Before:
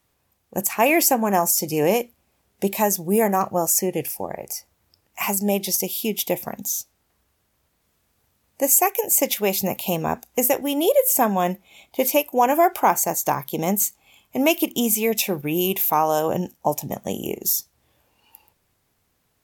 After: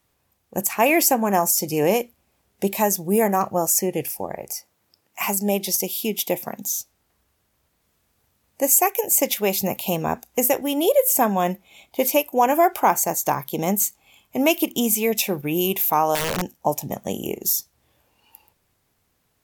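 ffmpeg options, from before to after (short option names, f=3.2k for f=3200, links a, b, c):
-filter_complex "[0:a]asettb=1/sr,asplit=3[a][b][c];[a]atrim=end=4.554[d];[b]atrim=start=4.55:end=6.65,asetpts=PTS-STARTPTS,afade=t=in:d=0.004:c=qsin,afade=t=out:st=2.096:d=0.004:c=qsin,highpass=140[e];[c]atrim=start=6.646[f];[d][e]acrossfade=d=0.004:c1=hsin:c2=qsin[g];[g][f]acrossfade=d=0.004:c1=qsin:c2=hsin,asettb=1/sr,asplit=3[h][i][j];[h]atrim=end=16.154[k];[i]atrim=start=16.15:end=16.57,asetpts=PTS-STARTPTS,afade=t=in:d=0.004:c=qsin,afade=t=out:st=0.416:d=0.004:c=qsin,aeval=exprs='(mod(7.5*val(0)+1,2)-1)/7.5':c=same[l];[j]atrim=start=16.566[m];[k][l]acrossfade=d=0.004:c1=hsin:c2=qsin[n];[n][m]acrossfade=d=0.004:c1=qsin:c2=hsin"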